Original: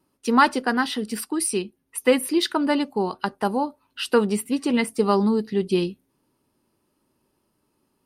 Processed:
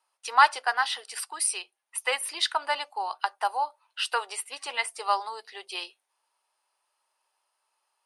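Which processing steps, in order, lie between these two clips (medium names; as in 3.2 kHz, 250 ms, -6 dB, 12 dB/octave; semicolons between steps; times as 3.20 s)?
elliptic band-pass 740–9800 Hz, stop band 50 dB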